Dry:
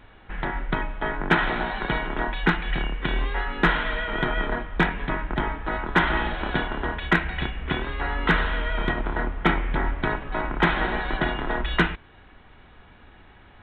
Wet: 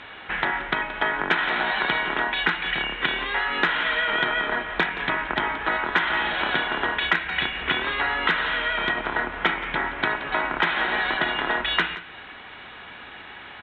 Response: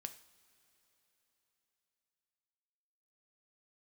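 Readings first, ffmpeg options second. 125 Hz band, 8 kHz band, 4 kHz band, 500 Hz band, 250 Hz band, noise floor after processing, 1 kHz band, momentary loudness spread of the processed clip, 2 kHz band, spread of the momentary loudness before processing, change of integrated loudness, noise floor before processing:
-12.0 dB, no reading, +6.5 dB, -1.5 dB, -6.0 dB, -42 dBFS, +1.5 dB, 13 LU, +4.0 dB, 7 LU, +2.0 dB, -51 dBFS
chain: -filter_complex "[0:a]lowpass=3100,crystalizer=i=7:c=0,acompressor=threshold=0.0398:ratio=6,highpass=f=360:p=1,asplit=2[s0][s1];[s1]aecho=0:1:174:0.178[s2];[s0][s2]amix=inputs=2:normalize=0,volume=2.66"

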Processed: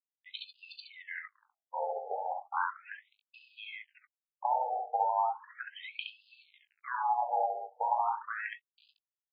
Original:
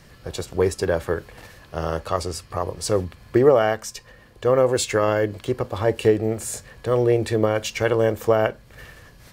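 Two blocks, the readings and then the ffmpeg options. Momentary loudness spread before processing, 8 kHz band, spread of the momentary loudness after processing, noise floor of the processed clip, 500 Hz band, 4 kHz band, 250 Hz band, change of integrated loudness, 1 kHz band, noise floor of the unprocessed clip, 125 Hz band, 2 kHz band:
11 LU, under -40 dB, 17 LU, under -85 dBFS, -22.0 dB, -13.5 dB, under -40 dB, -12.5 dB, -2.0 dB, -50 dBFS, under -40 dB, -10.0 dB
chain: -filter_complex "[0:a]aresample=11025,aeval=exprs='val(0)*gte(abs(val(0)),0.0188)':c=same,aresample=44100,lowshelf=f=170:g=-11,bandreject=f=50:t=h:w=6,bandreject=f=100:t=h:w=6,bandreject=f=150:t=h:w=6,bandreject=f=200:t=h:w=6,bandreject=f=250:t=h:w=6,bandreject=f=300:t=h:w=6,bandreject=f=350:t=h:w=6,bandreject=f=400:t=h:w=6,bandreject=f=450:t=h:w=6,asplit=2[s0][s1];[s1]adelay=19,volume=0.266[s2];[s0][s2]amix=inputs=2:normalize=0,asplit=2[s3][s4];[s4]asoftclip=type=tanh:threshold=0.158,volume=0.708[s5];[s3][s5]amix=inputs=2:normalize=0,aeval=exprs='val(0)*sin(2*PI*370*n/s)':c=same,afftdn=nr=18:nf=-35,acrossover=split=220|2700[s6][s7][s8];[s6]acompressor=threshold=0.0708:ratio=4[s9];[s7]acompressor=threshold=0.0316:ratio=4[s10];[s8]acompressor=threshold=0.00316:ratio=4[s11];[s9][s10][s11]amix=inputs=3:normalize=0,aecho=1:1:38|68:0.2|0.668,afftfilt=real='re*lt(hypot(re,im),0.501)':imag='im*lt(hypot(re,im),0.501)':win_size=1024:overlap=0.75,afftfilt=real='re*between(b*sr/1024,590*pow(3600/590,0.5+0.5*sin(2*PI*0.36*pts/sr))/1.41,590*pow(3600/590,0.5+0.5*sin(2*PI*0.36*pts/sr))*1.41)':imag='im*between(b*sr/1024,590*pow(3600/590,0.5+0.5*sin(2*PI*0.36*pts/sr))/1.41,590*pow(3600/590,0.5+0.5*sin(2*PI*0.36*pts/sr))*1.41)':win_size=1024:overlap=0.75,volume=1.33"

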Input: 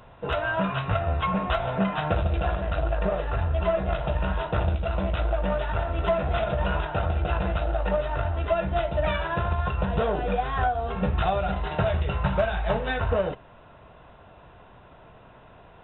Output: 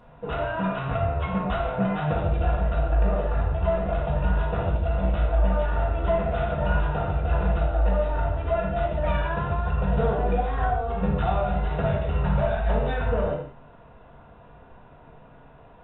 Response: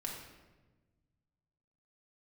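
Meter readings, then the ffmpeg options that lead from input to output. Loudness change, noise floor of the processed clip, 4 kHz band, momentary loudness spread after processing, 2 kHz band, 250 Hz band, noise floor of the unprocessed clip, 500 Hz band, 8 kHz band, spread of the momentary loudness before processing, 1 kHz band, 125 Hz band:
+1.0 dB, -50 dBFS, -6.0 dB, 3 LU, -2.5 dB, +1.5 dB, -51 dBFS, 0.0 dB, no reading, 2 LU, -0.5 dB, +2.0 dB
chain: -filter_complex "[0:a]highshelf=f=2300:g=-9.5[s0];[1:a]atrim=start_sample=2205,afade=t=out:st=0.23:d=0.01,atrim=end_sample=10584[s1];[s0][s1]afir=irnorm=-1:irlink=0,volume=1.12"

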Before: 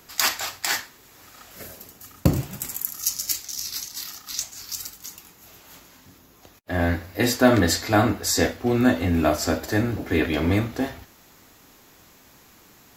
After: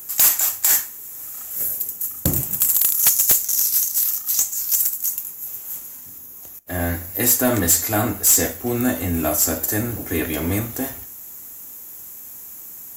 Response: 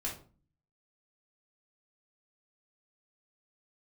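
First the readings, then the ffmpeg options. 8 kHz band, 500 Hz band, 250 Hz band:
+10.5 dB, -2.0 dB, -2.0 dB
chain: -filter_complex "[0:a]aexciter=amount=11.3:drive=2.8:freq=6500,acontrast=82,asplit=2[s0][s1];[1:a]atrim=start_sample=2205,adelay=44[s2];[s1][s2]afir=irnorm=-1:irlink=0,volume=0.0708[s3];[s0][s3]amix=inputs=2:normalize=0,volume=0.398"

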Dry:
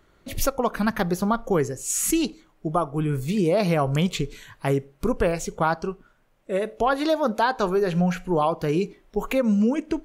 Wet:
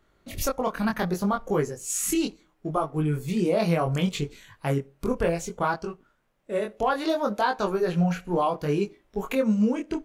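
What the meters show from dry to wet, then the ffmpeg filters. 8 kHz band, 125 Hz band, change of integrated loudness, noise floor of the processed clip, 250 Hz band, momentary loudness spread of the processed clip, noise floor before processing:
-3.0 dB, -2.0 dB, -2.5 dB, -67 dBFS, -2.0 dB, 8 LU, -61 dBFS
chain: -filter_complex "[0:a]asplit=2[s0][s1];[s1]aeval=exprs='sgn(val(0))*max(abs(val(0))-0.01,0)':c=same,volume=0.398[s2];[s0][s2]amix=inputs=2:normalize=0,flanger=delay=19.5:depth=4.3:speed=0.67,volume=0.75"

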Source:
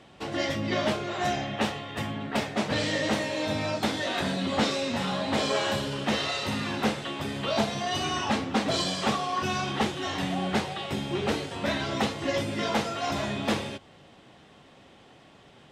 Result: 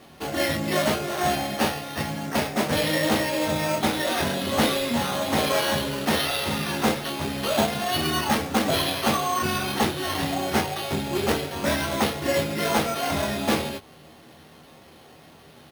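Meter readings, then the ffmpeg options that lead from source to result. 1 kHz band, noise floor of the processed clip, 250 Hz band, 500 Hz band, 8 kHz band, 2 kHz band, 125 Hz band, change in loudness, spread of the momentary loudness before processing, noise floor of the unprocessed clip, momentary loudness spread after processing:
+4.0 dB, -50 dBFS, +3.0 dB, +4.5 dB, +7.5 dB, +4.0 dB, +3.0 dB, +4.0 dB, 4 LU, -54 dBFS, 4 LU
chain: -af "aecho=1:1:13|25:0.473|0.562,acrusher=samples=6:mix=1:aa=0.000001,volume=1.33"

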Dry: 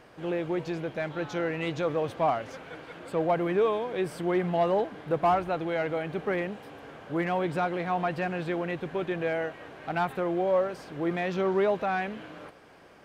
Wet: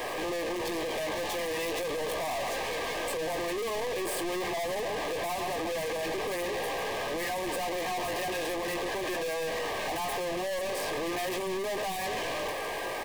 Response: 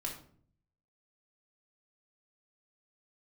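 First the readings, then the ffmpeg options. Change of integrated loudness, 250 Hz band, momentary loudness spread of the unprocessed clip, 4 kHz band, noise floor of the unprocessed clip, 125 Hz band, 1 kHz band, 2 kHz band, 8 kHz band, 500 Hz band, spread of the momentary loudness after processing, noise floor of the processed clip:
-3.0 dB, -6.5 dB, 11 LU, +9.0 dB, -53 dBFS, -10.5 dB, -3.0 dB, +1.5 dB, no reading, -3.5 dB, 1 LU, -34 dBFS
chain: -filter_complex "[0:a]lowshelf=f=270:t=q:w=1.5:g=-13,aecho=1:1:137:0.15,asplit=2[s0][s1];[s1]highpass=f=720:p=1,volume=35.5,asoftclip=type=tanh:threshold=0.224[s2];[s0][s2]amix=inputs=2:normalize=0,lowpass=f=3100:p=1,volume=0.501,aexciter=amount=2.1:drive=9.8:freq=8100,flanger=delay=16:depth=3.3:speed=0.43,aeval=exprs='(tanh(79.4*val(0)+0.1)-tanh(0.1))/79.4':c=same,asplit=2[s3][s4];[s4]aeval=exprs='(mod(141*val(0)+1,2)-1)/141':c=same,volume=0.316[s5];[s3][s5]amix=inputs=2:normalize=0,asuperstop=centerf=1400:order=20:qfactor=4.5,volume=2.24"

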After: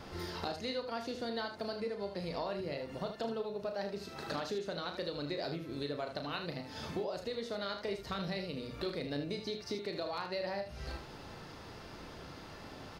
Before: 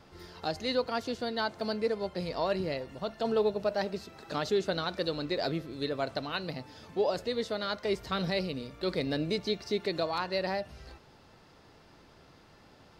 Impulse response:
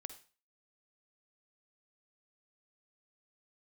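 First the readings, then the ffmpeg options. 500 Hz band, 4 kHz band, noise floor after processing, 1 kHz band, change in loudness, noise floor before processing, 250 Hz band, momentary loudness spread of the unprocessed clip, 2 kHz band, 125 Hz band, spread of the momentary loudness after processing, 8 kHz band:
-7.0 dB, -5.5 dB, -50 dBFS, -6.0 dB, -7.0 dB, -58 dBFS, -5.5 dB, 8 LU, -6.0 dB, -4.5 dB, 11 LU, -3.5 dB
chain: -filter_complex "[0:a]bandreject=f=7600:w=14,acompressor=threshold=0.00562:ratio=6,asplit=2[s0][s1];[s1]aecho=0:1:35|77:0.422|0.376[s2];[s0][s2]amix=inputs=2:normalize=0,volume=2.37"

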